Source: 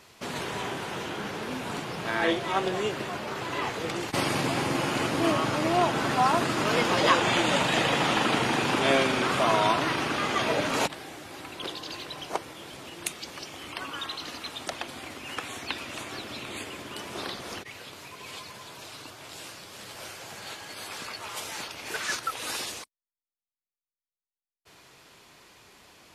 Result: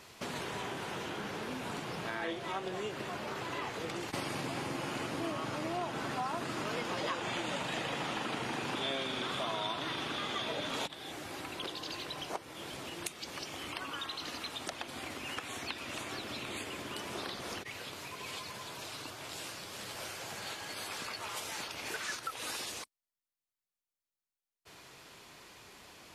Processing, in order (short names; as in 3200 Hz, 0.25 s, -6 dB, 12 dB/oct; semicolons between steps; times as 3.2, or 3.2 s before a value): 8.75–11.12 bell 3500 Hz +12 dB 0.24 oct; compressor 3:1, threshold -38 dBFS, peak gain reduction 16 dB